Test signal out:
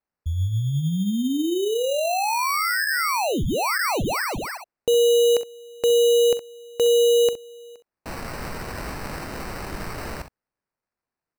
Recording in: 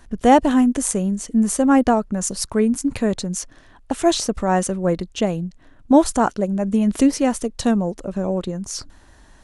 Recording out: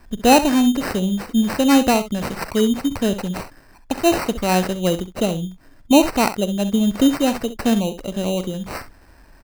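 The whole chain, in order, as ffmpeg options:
ffmpeg -i in.wav -filter_complex "[0:a]aecho=1:1:44|65:0.126|0.237,acrossover=split=9000[link_01][link_02];[link_02]acompressor=threshold=-37dB:ratio=4:attack=1:release=60[link_03];[link_01][link_03]amix=inputs=2:normalize=0,acrusher=samples=13:mix=1:aa=0.000001" out.wav

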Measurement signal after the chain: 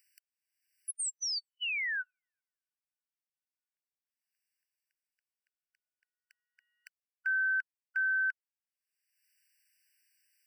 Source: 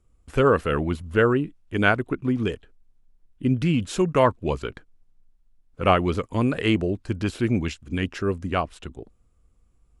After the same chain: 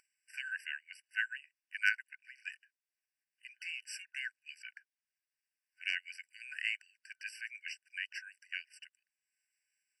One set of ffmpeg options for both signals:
ffmpeg -i in.wav -af "aeval=exprs='0.708*(cos(1*acos(clip(val(0)/0.708,-1,1)))-cos(1*PI/2))+0.00501*(cos(2*acos(clip(val(0)/0.708,-1,1)))-cos(2*PI/2))+0.1*(cos(3*acos(clip(val(0)/0.708,-1,1)))-cos(3*PI/2))+0.0355*(cos(5*acos(clip(val(0)/0.708,-1,1)))-cos(5*PI/2))+0.00447*(cos(7*acos(clip(val(0)/0.708,-1,1)))-cos(7*PI/2))':channel_layout=same,acompressor=mode=upward:threshold=-45dB:ratio=2.5,afftfilt=real='re*eq(mod(floor(b*sr/1024/1500),2),1)':imag='im*eq(mod(floor(b*sr/1024/1500),2),1)':win_size=1024:overlap=0.75,volume=-3.5dB" out.wav

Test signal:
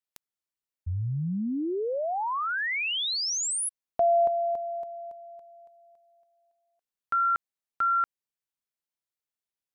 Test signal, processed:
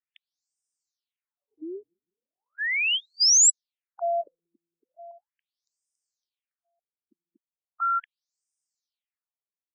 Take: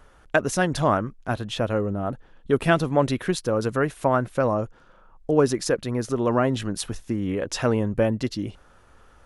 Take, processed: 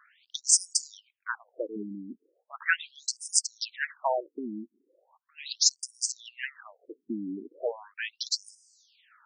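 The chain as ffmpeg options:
ffmpeg -i in.wav -af "crystalizer=i=9.5:c=0,afftfilt=real='re*between(b*sr/1024,250*pow(6900/250,0.5+0.5*sin(2*PI*0.38*pts/sr))/1.41,250*pow(6900/250,0.5+0.5*sin(2*PI*0.38*pts/sr))*1.41)':imag='im*between(b*sr/1024,250*pow(6900/250,0.5+0.5*sin(2*PI*0.38*pts/sr))/1.41,250*pow(6900/250,0.5+0.5*sin(2*PI*0.38*pts/sr))*1.41)':win_size=1024:overlap=0.75,volume=-6.5dB" out.wav

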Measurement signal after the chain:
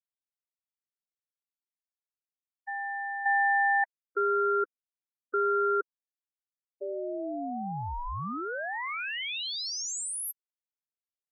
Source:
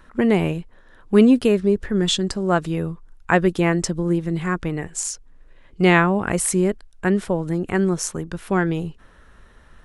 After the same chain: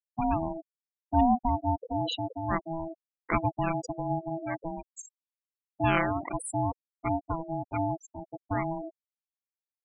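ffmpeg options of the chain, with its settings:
ffmpeg -i in.wav -af "aeval=exprs='val(0)*gte(abs(val(0)),0.0168)':channel_layout=same,aeval=exprs='val(0)*sin(2*PI*490*n/s)':channel_layout=same,afftfilt=real='re*gte(hypot(re,im),0.126)':imag='im*gte(hypot(re,im),0.126)':win_size=1024:overlap=0.75,volume=-7dB" out.wav

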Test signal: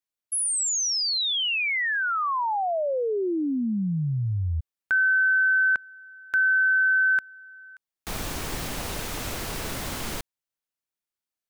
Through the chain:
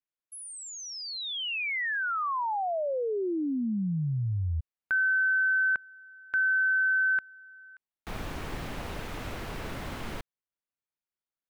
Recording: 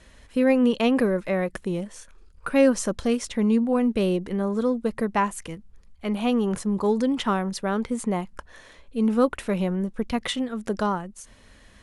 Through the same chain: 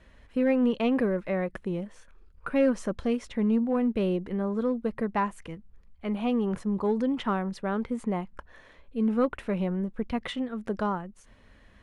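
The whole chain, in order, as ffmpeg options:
ffmpeg -i in.wav -filter_complex "[0:a]asplit=2[link_01][link_02];[link_02]volume=16.5dB,asoftclip=hard,volume=-16.5dB,volume=-3.5dB[link_03];[link_01][link_03]amix=inputs=2:normalize=0,bass=frequency=250:gain=1,treble=frequency=4000:gain=-13,volume=-8.5dB" out.wav

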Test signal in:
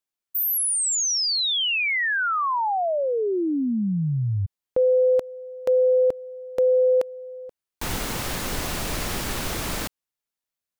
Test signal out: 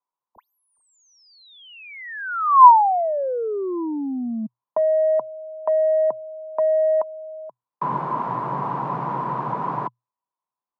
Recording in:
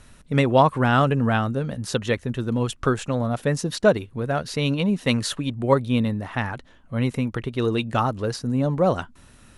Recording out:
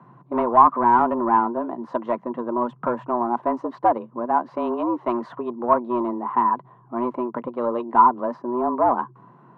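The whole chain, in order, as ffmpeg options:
ffmpeg -i in.wav -af "afreqshift=120,asoftclip=type=tanh:threshold=-15.5dB,lowpass=frequency=1000:width_type=q:width=12,volume=-2.5dB" out.wav

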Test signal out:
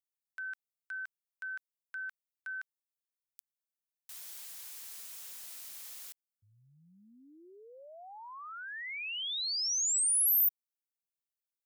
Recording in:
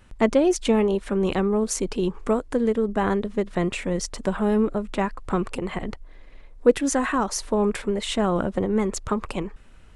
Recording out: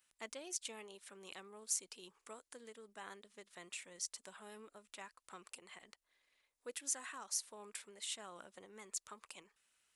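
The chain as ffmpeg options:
ffmpeg -i in.wav -af "aderivative,volume=-8.5dB" out.wav

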